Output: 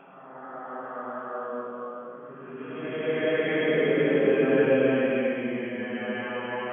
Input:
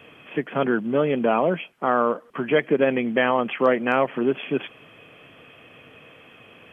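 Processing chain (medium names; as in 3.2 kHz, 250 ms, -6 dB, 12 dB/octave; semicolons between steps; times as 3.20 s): Doppler pass-by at 2.65 s, 11 m/s, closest 1.6 m; level-controlled noise filter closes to 1.2 kHz, open at -22.5 dBFS; Paulstretch 4.2×, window 0.50 s, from 1.63 s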